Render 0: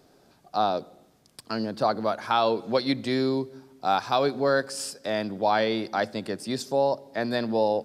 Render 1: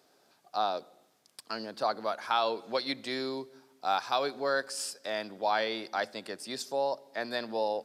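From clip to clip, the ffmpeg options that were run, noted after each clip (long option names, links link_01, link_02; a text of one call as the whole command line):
ffmpeg -i in.wav -af "highpass=frequency=770:poles=1,volume=-2.5dB" out.wav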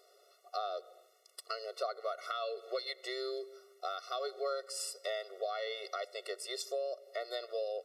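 ffmpeg -i in.wav -af "acompressor=threshold=-37dB:ratio=4,afftfilt=real='re*eq(mod(floor(b*sr/1024/370),2),1)':imag='im*eq(mod(floor(b*sr/1024/370),2),1)':win_size=1024:overlap=0.75,volume=3.5dB" out.wav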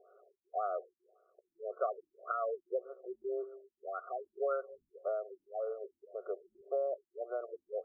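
ffmpeg -i in.wav -filter_complex "[0:a]acrossover=split=970|2200|3200[link_01][link_02][link_03][link_04];[link_04]volume=34.5dB,asoftclip=hard,volume=-34.5dB[link_05];[link_01][link_02][link_03][link_05]amix=inputs=4:normalize=0,afftfilt=real='re*lt(b*sr/1024,320*pow(1800/320,0.5+0.5*sin(2*PI*1.8*pts/sr)))':imag='im*lt(b*sr/1024,320*pow(1800/320,0.5+0.5*sin(2*PI*1.8*pts/sr)))':win_size=1024:overlap=0.75,volume=3dB" out.wav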